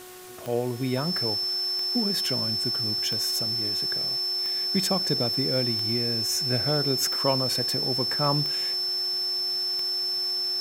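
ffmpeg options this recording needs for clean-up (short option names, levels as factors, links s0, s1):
-af "adeclick=t=4,bandreject=f=366:t=h:w=4,bandreject=f=732:t=h:w=4,bandreject=f=1098:t=h:w=4,bandreject=f=1464:t=h:w=4,bandreject=f=1830:t=h:w=4,bandreject=f=5300:w=30,afwtdn=0.005"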